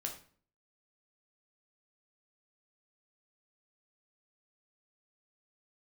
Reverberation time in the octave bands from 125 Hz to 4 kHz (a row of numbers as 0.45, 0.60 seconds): 0.60, 0.60, 0.50, 0.45, 0.40, 0.35 seconds